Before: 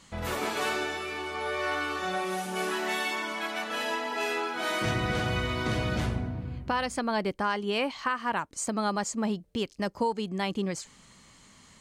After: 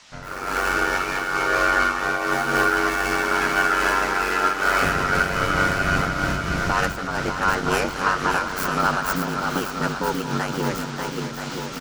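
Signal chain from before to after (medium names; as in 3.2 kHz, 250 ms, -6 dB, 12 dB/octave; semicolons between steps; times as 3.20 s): tracing distortion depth 0.18 ms; peaking EQ 3.6 kHz -10 dB 0.32 oct; feedback delay 220 ms, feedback 59%, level -13 dB; ring modulator 47 Hz; peak limiter -23 dBFS, peak gain reduction 6 dB; peaking EQ 1.4 kHz +13 dB 0.35 oct; band noise 580–6200 Hz -49 dBFS; level rider gain up to 9 dB; shuffle delay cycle 977 ms, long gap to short 1.5:1, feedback 49%, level -5 dB; random flutter of the level, depth 65%; trim +2 dB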